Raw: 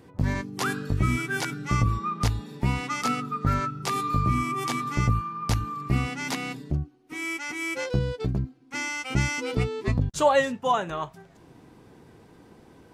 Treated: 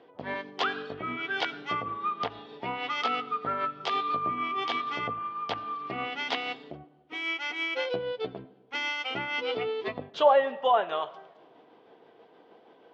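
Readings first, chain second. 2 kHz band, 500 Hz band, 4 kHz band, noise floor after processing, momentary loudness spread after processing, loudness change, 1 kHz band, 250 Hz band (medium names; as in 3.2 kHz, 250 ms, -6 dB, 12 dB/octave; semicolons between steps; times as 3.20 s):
-1.5 dB, +0.5 dB, +2.0 dB, -58 dBFS, 11 LU, -3.0 dB, -0.5 dB, -11.0 dB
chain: tremolo 6.3 Hz, depth 31%; low-pass that closes with the level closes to 1.6 kHz, closed at -20 dBFS; cabinet simulation 440–4500 Hz, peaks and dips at 460 Hz +5 dB, 690 Hz +7 dB, 3.2 kHz +10 dB; algorithmic reverb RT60 1.3 s, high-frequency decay 0.4×, pre-delay 45 ms, DRR 18.5 dB; tape noise reduction on one side only decoder only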